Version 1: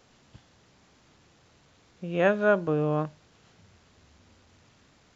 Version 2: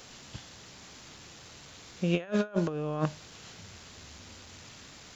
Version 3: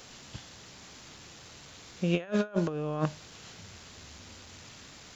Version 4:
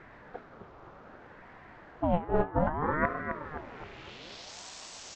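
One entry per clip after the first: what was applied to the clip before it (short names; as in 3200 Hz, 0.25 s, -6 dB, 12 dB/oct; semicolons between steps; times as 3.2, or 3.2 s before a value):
high shelf 2400 Hz +10 dB; negative-ratio compressor -30 dBFS, ratio -0.5; gain +1 dB
nothing audible
low-pass sweep 1000 Hz -> 6300 Hz, 3.39–4.61; feedback echo 0.261 s, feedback 53%, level -7.5 dB; ring modulator with a swept carrier 550 Hz, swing 60%, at 0.63 Hz; gain +2.5 dB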